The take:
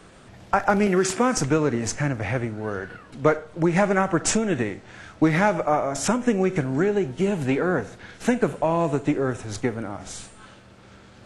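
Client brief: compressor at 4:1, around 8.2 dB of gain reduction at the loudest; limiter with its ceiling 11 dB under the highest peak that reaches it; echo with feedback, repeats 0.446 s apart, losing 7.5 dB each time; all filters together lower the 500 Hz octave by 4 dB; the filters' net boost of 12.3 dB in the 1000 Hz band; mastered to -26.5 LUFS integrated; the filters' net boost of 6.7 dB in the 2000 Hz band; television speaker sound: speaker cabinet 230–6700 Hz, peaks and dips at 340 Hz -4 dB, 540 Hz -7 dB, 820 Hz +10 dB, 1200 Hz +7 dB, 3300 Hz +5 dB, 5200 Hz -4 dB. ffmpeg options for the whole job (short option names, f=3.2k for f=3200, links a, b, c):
-af "equalizer=f=500:t=o:g=-5,equalizer=f=1k:t=o:g=7.5,equalizer=f=2k:t=o:g=4,acompressor=threshold=-21dB:ratio=4,alimiter=limit=-18dB:level=0:latency=1,highpass=f=230:w=0.5412,highpass=f=230:w=1.3066,equalizer=f=340:t=q:w=4:g=-4,equalizer=f=540:t=q:w=4:g=-7,equalizer=f=820:t=q:w=4:g=10,equalizer=f=1.2k:t=q:w=4:g=7,equalizer=f=3.3k:t=q:w=4:g=5,equalizer=f=5.2k:t=q:w=4:g=-4,lowpass=f=6.7k:w=0.5412,lowpass=f=6.7k:w=1.3066,aecho=1:1:446|892|1338|1784|2230:0.422|0.177|0.0744|0.0312|0.0131,volume=0.5dB"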